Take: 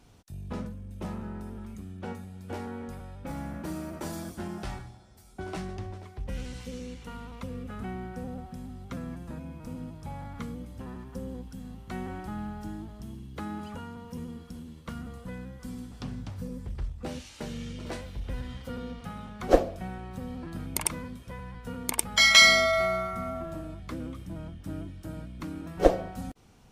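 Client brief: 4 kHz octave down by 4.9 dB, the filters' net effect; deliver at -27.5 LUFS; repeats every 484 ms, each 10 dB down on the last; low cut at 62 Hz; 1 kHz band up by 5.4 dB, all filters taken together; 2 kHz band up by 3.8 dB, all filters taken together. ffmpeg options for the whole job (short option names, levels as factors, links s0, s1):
-af "highpass=62,equalizer=f=1000:t=o:g=7,equalizer=f=2000:t=o:g=5,equalizer=f=4000:t=o:g=-8.5,aecho=1:1:484|968|1452|1936:0.316|0.101|0.0324|0.0104,volume=0.944"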